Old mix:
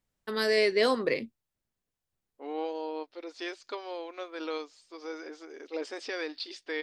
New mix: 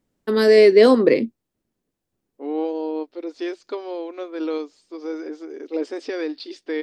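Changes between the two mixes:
first voice +4.0 dB; master: add peaking EQ 300 Hz +13.5 dB 1.9 oct

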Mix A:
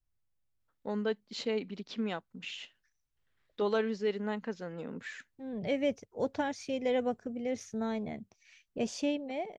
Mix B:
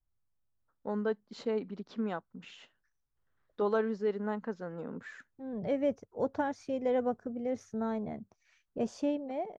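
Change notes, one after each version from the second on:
master: add resonant high shelf 1.8 kHz -8.5 dB, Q 1.5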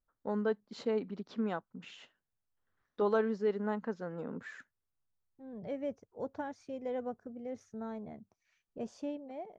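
first voice: entry -0.60 s; second voice -7.5 dB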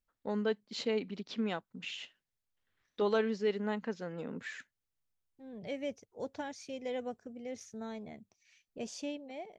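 second voice: add tone controls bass -2 dB, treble +5 dB; master: add resonant high shelf 1.8 kHz +8.5 dB, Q 1.5

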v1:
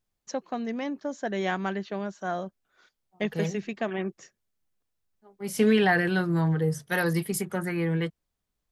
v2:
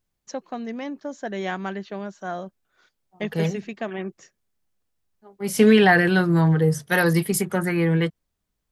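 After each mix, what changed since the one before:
second voice +6.5 dB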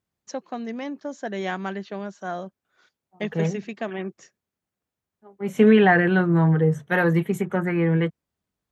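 second voice: add boxcar filter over 9 samples; master: add high-pass 84 Hz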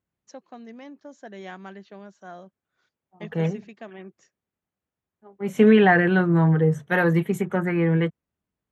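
first voice -10.5 dB

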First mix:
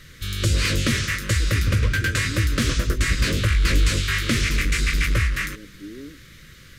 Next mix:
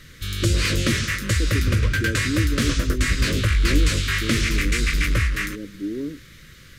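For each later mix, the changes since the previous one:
speech +9.5 dB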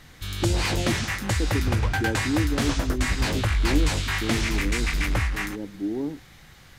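background -4.0 dB; master: remove Butterworth band-stop 810 Hz, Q 1.2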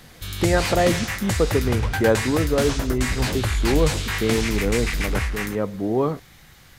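speech: remove cascade formant filter u; master: add treble shelf 10 kHz +8.5 dB

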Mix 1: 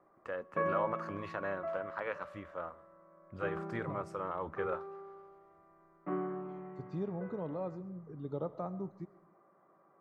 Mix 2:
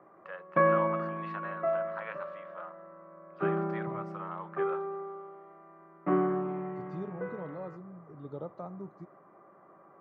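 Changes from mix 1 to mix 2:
first voice: add Butterworth band-pass 1.7 kHz, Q 0.57; second voice: send -11.0 dB; background +9.5 dB

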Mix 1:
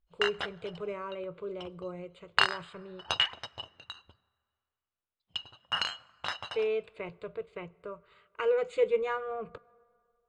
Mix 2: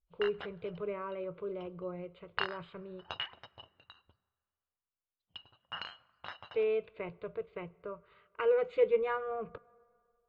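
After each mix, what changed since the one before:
background -7.5 dB; master: add distance through air 250 m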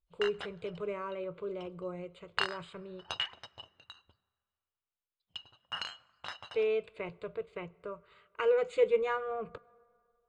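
master: remove distance through air 250 m

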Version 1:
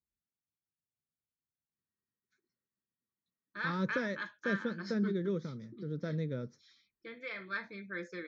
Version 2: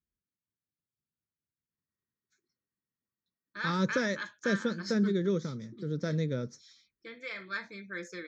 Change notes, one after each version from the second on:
speech +4.5 dB; master: remove distance through air 180 m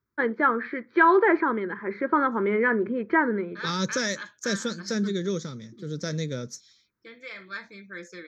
first voice: unmuted; second voice: remove tape spacing loss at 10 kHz 23 dB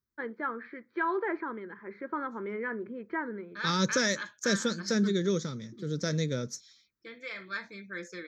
first voice -12.0 dB

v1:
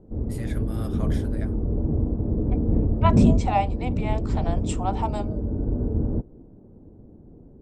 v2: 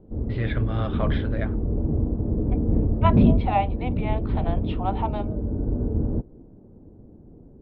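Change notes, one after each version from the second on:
first voice +9.5 dB; master: add steep low-pass 3.8 kHz 48 dB/octave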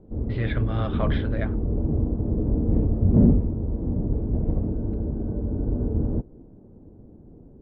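second voice: muted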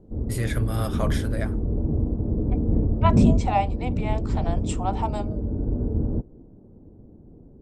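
second voice: unmuted; background: add distance through air 400 m; master: remove steep low-pass 3.8 kHz 48 dB/octave

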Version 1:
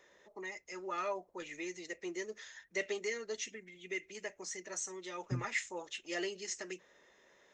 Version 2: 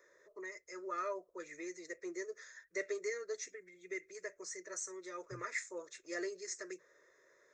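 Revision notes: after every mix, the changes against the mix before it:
second voice -10.5 dB; master: add static phaser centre 810 Hz, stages 6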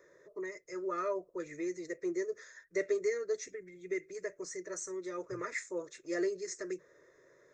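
first voice: remove high-pass 930 Hz 6 dB/octave

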